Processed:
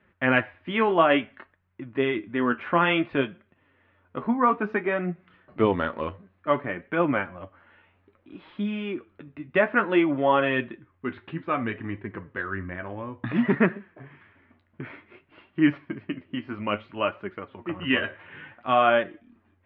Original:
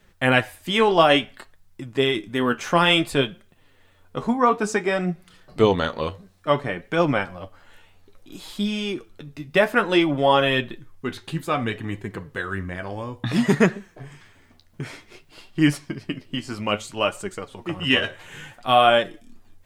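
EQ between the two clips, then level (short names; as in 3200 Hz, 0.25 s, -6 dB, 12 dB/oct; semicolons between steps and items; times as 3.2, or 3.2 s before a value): air absorption 200 m; speaker cabinet 100–2600 Hz, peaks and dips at 120 Hz -4 dB, 190 Hz -3 dB, 460 Hz -6 dB, 770 Hz -6 dB; bell 150 Hz -7.5 dB 0.24 oct; 0.0 dB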